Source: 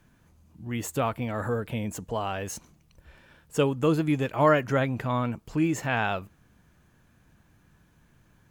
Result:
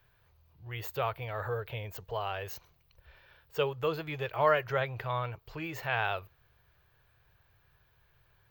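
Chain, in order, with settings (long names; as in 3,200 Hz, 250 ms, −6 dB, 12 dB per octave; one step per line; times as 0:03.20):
drawn EQ curve 120 Hz 0 dB, 250 Hz −24 dB, 400 Hz 0 dB, 4,400 Hz +4 dB, 10,000 Hz −22 dB, 16,000 Hz +15 dB
level −5.5 dB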